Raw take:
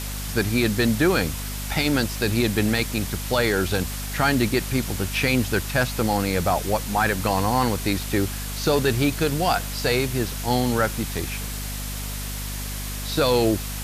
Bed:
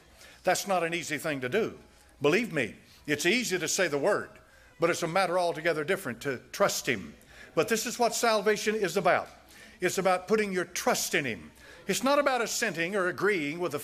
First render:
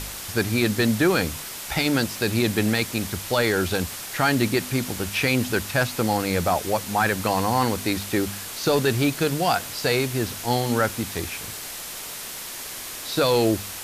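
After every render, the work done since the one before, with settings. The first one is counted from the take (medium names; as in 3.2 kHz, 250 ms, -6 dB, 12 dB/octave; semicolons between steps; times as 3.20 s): de-hum 50 Hz, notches 5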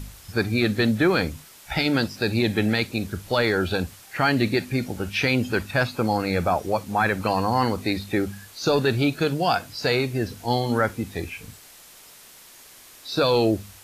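noise print and reduce 13 dB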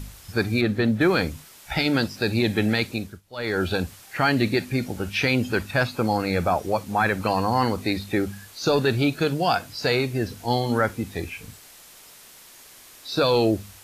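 0.61–1.01 s: treble shelf 2.9 kHz -10.5 dB; 2.91–3.62 s: dip -21.5 dB, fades 0.30 s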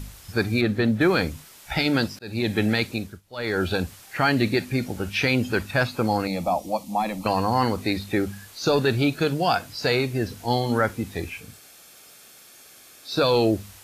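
2.19–2.66 s: fade in equal-power; 6.27–7.26 s: static phaser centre 410 Hz, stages 6; 11.40–13.11 s: comb of notches 970 Hz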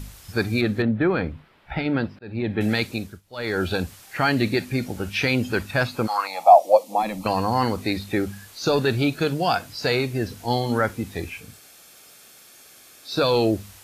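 0.82–2.61 s: distance through air 450 m; 6.06–7.02 s: resonant high-pass 1.3 kHz -> 370 Hz, resonance Q 5.5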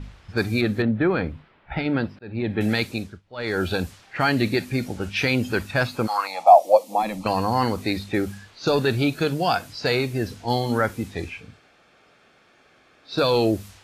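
level-controlled noise filter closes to 1.9 kHz, open at -21.5 dBFS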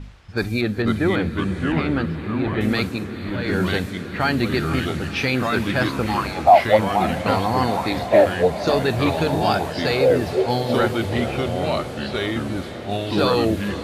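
ever faster or slower copies 428 ms, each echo -3 st, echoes 2; echo that smears into a reverb 473 ms, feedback 77%, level -14 dB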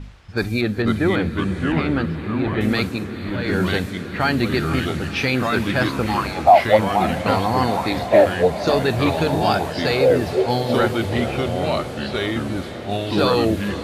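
trim +1 dB; peak limiter -2 dBFS, peak gain reduction 1 dB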